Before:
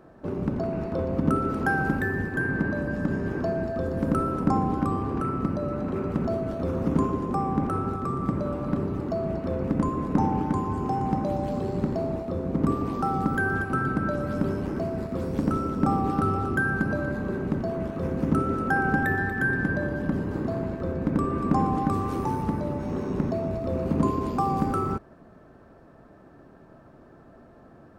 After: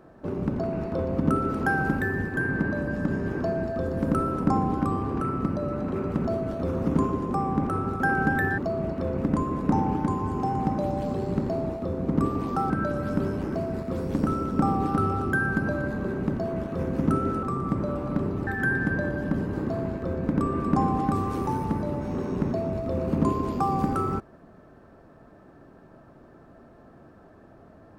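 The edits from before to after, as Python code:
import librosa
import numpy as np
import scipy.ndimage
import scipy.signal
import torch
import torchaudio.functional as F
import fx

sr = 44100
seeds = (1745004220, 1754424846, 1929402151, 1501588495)

y = fx.edit(x, sr, fx.swap(start_s=8.0, length_s=1.04, other_s=18.67, other_length_s=0.58),
    fx.cut(start_s=13.16, length_s=0.78), tone=tone)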